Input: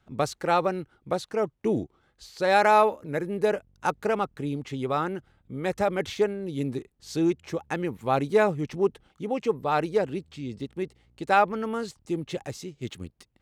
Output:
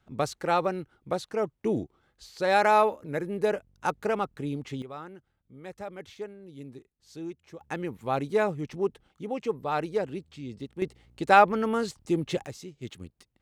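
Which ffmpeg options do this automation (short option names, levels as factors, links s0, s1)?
-af "asetnsamples=n=441:p=0,asendcmd='4.82 volume volume -14dB;7.61 volume volume -4dB;10.82 volume volume 3dB;12.46 volume volume -4.5dB',volume=0.794"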